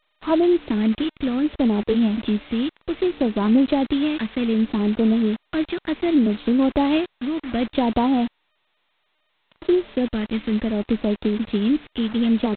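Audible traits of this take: phasing stages 2, 0.65 Hz, lowest notch 740–2000 Hz; a quantiser's noise floor 6-bit, dither none; G.726

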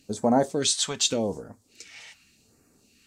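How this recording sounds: phasing stages 2, 0.85 Hz, lowest notch 330–3100 Hz; AAC

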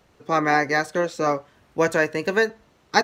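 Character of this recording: noise floor -60 dBFS; spectral tilt -4.5 dB/oct

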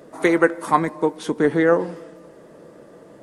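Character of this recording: noise floor -47 dBFS; spectral tilt -2.0 dB/oct

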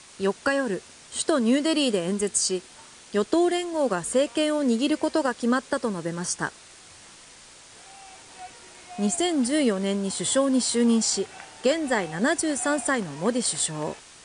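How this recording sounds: a quantiser's noise floor 8-bit, dither triangular; MP3

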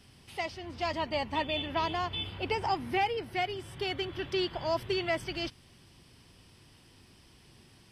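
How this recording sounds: noise floor -59 dBFS; spectral tilt -2.5 dB/oct

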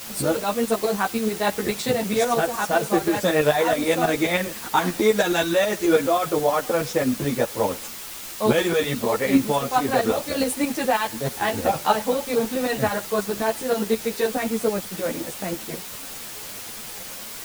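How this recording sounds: tremolo saw up 9.4 Hz, depth 70%; a quantiser's noise floor 6-bit, dither triangular; a shimmering, thickened sound

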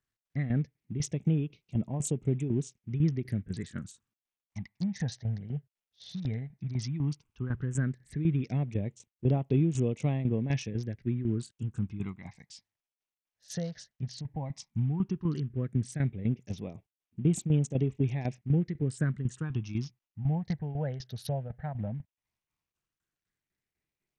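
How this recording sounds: tremolo saw down 4 Hz, depth 70%; phasing stages 8, 0.13 Hz, lowest notch 320–1600 Hz; SBC

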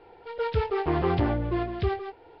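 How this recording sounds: Nellymoser

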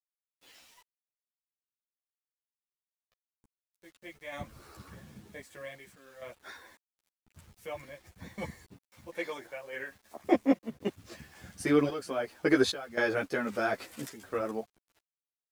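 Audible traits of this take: random-step tremolo 3.7 Hz, depth 95%; a quantiser's noise floor 10-bit, dither none; a shimmering, thickened sound

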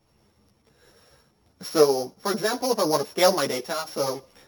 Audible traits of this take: a buzz of ramps at a fixed pitch in blocks of 8 samples; tremolo saw up 3.3 Hz, depth 35%; a shimmering, thickened sound

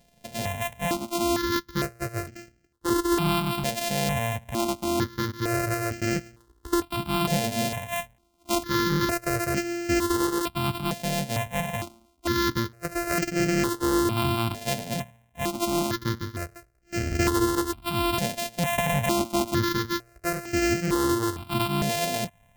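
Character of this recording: a buzz of ramps at a fixed pitch in blocks of 128 samples; notches that jump at a steady rate 2.2 Hz 330–3600 Hz

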